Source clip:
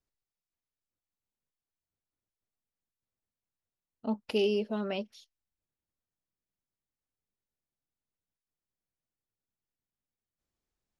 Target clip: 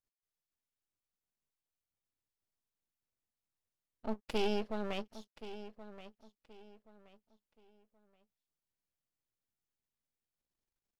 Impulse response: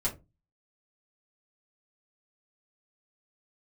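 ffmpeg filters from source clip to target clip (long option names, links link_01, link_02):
-filter_complex "[0:a]asplit=2[link_01][link_02];[link_02]adelay=1076,lowpass=frequency=4900:poles=1,volume=-13.5dB,asplit=2[link_03][link_04];[link_04]adelay=1076,lowpass=frequency=4900:poles=1,volume=0.3,asplit=2[link_05][link_06];[link_06]adelay=1076,lowpass=frequency=4900:poles=1,volume=0.3[link_07];[link_01][link_03][link_05][link_07]amix=inputs=4:normalize=0,aeval=exprs='max(val(0),0)':channel_layout=same,volume=-1.5dB"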